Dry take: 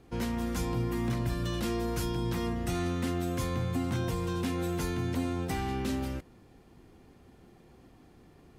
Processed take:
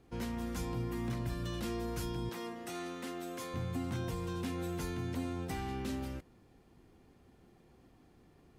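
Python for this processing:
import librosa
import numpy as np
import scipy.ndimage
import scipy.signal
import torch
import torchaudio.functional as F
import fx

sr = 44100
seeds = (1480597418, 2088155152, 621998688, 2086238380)

y = fx.highpass(x, sr, hz=320.0, slope=12, at=(2.29, 3.54))
y = y * 10.0 ** (-6.0 / 20.0)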